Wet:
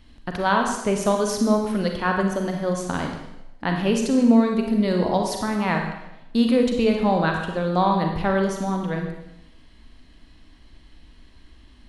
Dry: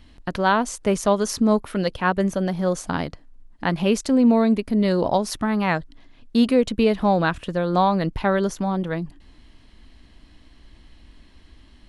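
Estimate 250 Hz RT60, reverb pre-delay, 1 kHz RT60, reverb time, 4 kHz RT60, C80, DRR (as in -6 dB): 0.80 s, 34 ms, 0.90 s, 0.90 s, 0.90 s, 6.0 dB, 2.5 dB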